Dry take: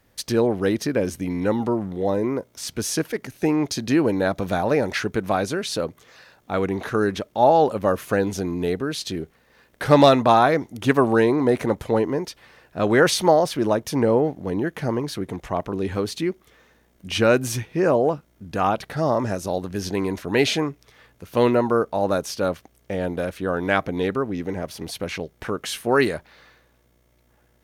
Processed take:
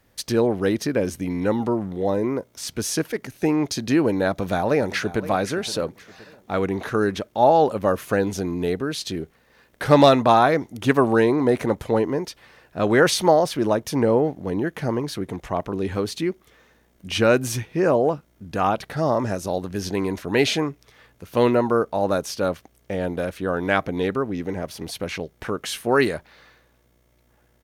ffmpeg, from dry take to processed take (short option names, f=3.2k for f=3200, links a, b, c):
-filter_complex "[0:a]asplit=2[a][b];[b]afade=t=in:st=4.28:d=0.01,afade=t=out:st=5.3:d=0.01,aecho=0:1:520|1040|1560|2080:0.16788|0.0671522|0.0268609|0.0107443[c];[a][c]amix=inputs=2:normalize=0"